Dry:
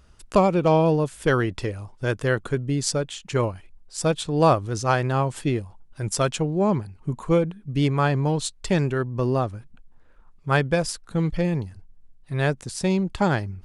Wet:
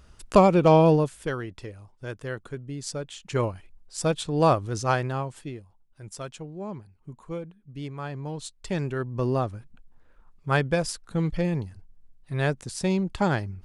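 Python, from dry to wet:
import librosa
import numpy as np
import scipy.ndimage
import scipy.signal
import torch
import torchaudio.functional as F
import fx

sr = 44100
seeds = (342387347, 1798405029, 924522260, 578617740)

y = fx.gain(x, sr, db=fx.line((0.95, 1.5), (1.36, -11.0), (2.78, -11.0), (3.39, -2.5), (4.93, -2.5), (5.58, -14.5), (7.97, -14.5), (9.23, -2.5)))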